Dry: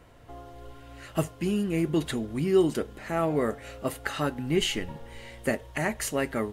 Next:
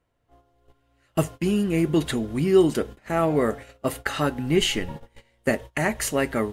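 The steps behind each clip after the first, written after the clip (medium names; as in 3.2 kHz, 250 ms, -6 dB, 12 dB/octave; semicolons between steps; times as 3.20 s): gate -39 dBFS, range -24 dB; trim +4.5 dB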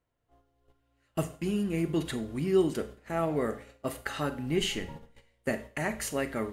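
Schroeder reverb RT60 0.4 s, combs from 32 ms, DRR 11.5 dB; trim -8 dB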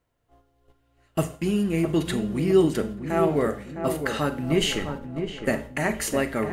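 filtered feedback delay 659 ms, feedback 49%, low-pass 1.4 kHz, level -7 dB; trim +6 dB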